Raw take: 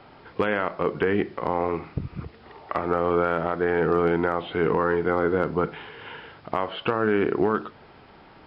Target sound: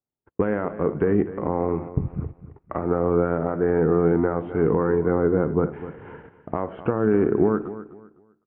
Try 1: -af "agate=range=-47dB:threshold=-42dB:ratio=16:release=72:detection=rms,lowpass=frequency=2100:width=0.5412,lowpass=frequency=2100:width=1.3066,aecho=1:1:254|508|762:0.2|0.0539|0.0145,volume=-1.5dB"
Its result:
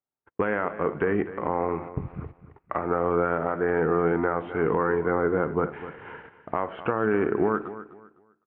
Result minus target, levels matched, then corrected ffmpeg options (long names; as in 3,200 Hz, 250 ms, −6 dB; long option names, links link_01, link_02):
1,000 Hz band +5.5 dB
-af "agate=range=-47dB:threshold=-42dB:ratio=16:release=72:detection=rms,lowpass=frequency=2100:width=0.5412,lowpass=frequency=2100:width=1.3066,tiltshelf=frequency=710:gain=8,aecho=1:1:254|508|762:0.2|0.0539|0.0145,volume=-1.5dB"